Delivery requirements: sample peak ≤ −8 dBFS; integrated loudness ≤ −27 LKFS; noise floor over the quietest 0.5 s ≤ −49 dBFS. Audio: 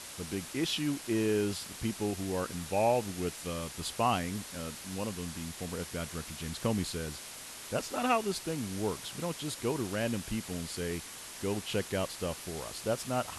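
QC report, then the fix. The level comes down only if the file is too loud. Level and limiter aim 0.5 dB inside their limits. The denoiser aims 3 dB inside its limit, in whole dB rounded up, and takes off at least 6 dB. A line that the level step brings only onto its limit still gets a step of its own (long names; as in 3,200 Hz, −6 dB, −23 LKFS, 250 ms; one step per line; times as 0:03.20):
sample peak −16.0 dBFS: in spec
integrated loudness −34.0 LKFS: in spec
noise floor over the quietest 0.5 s −46 dBFS: out of spec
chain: broadband denoise 6 dB, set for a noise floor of −46 dBFS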